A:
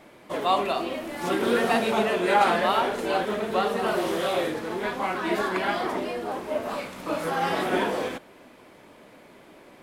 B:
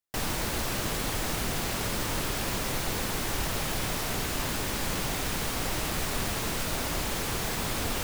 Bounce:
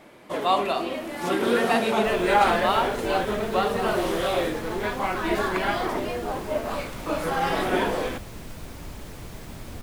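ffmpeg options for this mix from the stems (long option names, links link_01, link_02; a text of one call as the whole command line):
ffmpeg -i stem1.wav -i stem2.wav -filter_complex "[0:a]volume=1dB[link_01];[1:a]lowshelf=frequency=340:gain=11.5,adelay=1900,volume=-15dB[link_02];[link_01][link_02]amix=inputs=2:normalize=0" out.wav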